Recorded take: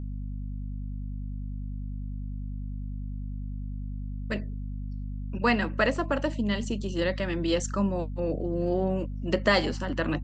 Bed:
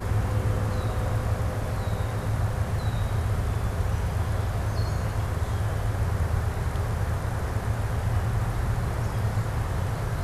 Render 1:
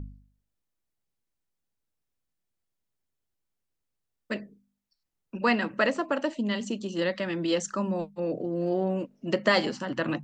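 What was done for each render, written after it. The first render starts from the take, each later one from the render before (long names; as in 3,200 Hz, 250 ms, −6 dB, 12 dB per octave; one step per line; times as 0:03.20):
hum removal 50 Hz, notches 5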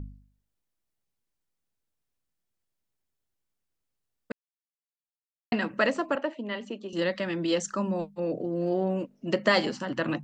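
0:04.32–0:05.52: silence
0:06.15–0:06.93: three-way crossover with the lows and the highs turned down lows −14 dB, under 290 Hz, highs −18 dB, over 3,100 Hz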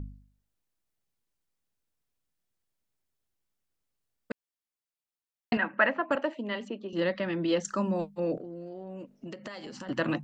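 0:05.57–0:06.11: loudspeaker in its box 260–2,700 Hz, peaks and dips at 310 Hz −3 dB, 450 Hz −9 dB, 870 Hz +4 dB, 1,600 Hz +6 dB
0:06.68–0:07.65: high-frequency loss of the air 170 metres
0:08.37–0:09.89: downward compressor 16 to 1, threshold −37 dBFS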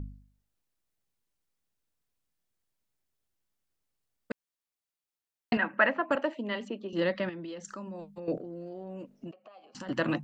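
0:07.29–0:08.28: downward compressor 5 to 1, threshold −39 dBFS
0:09.31–0:09.75: formant filter a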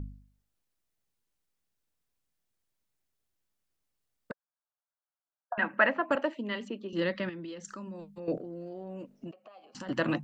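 0:04.31–0:05.58: linear-phase brick-wall band-pass 530–1,700 Hz
0:06.28–0:08.20: parametric band 710 Hz −6.5 dB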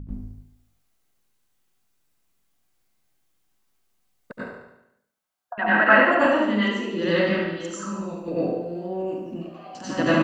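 repeating echo 72 ms, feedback 55%, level −7 dB
dense smooth reverb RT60 0.6 s, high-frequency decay 0.85×, pre-delay 80 ms, DRR −10 dB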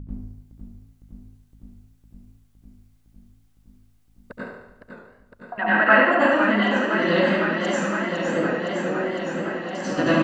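feedback echo with a swinging delay time 510 ms, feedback 80%, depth 109 cents, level −7.5 dB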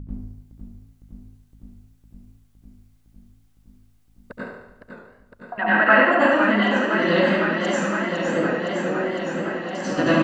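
level +1 dB
brickwall limiter −3 dBFS, peak gain reduction 1.5 dB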